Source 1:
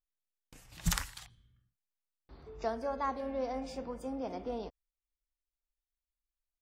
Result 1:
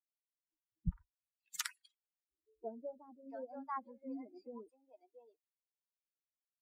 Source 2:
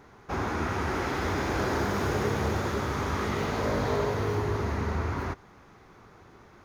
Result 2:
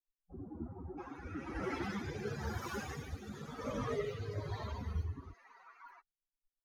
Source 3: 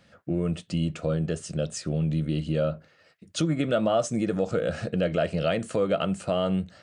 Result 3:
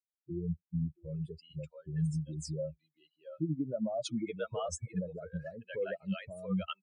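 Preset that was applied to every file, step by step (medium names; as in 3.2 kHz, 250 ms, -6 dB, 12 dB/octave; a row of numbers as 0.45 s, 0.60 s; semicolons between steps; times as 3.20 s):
expander on every frequency bin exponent 3; bands offset in time lows, highs 680 ms, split 660 Hz; rotary cabinet horn 1 Hz; trim -1 dB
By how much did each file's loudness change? -8.5 LU, -12.5 LU, -10.5 LU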